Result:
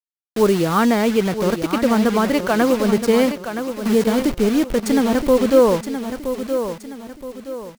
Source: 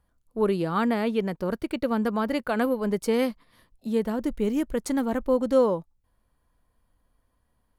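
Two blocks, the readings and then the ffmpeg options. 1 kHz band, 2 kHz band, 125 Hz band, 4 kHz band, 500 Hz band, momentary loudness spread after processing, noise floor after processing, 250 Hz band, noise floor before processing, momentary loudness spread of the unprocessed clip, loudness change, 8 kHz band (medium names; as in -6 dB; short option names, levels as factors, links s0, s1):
+8.5 dB, +9.5 dB, +9.0 dB, +12.0 dB, +8.5 dB, 14 LU, -55 dBFS, +9.0 dB, -72 dBFS, 7 LU, +8.0 dB, +13.0 dB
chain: -filter_complex "[0:a]acontrast=73,acrusher=bits=4:mix=0:aa=0.000001,asplit=2[s0][s1];[s1]aecho=0:1:971|1942|2913|3884:0.355|0.135|0.0512|0.0195[s2];[s0][s2]amix=inputs=2:normalize=0,adynamicequalizer=threshold=0.00891:dfrequency=6300:dqfactor=0.7:tfrequency=6300:tqfactor=0.7:attack=5:release=100:ratio=0.375:range=2:mode=cutabove:tftype=highshelf,volume=1.19"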